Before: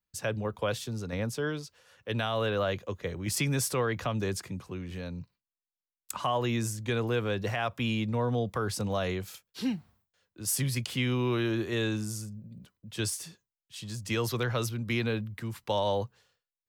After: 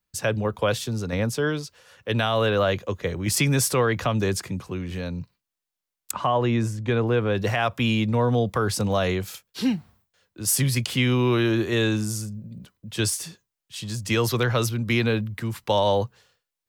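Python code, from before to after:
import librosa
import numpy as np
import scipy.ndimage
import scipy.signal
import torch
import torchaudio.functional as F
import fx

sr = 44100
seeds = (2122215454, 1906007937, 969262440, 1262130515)

y = fx.lowpass(x, sr, hz=1800.0, slope=6, at=(6.11, 7.35))
y = y * 10.0 ** (7.5 / 20.0)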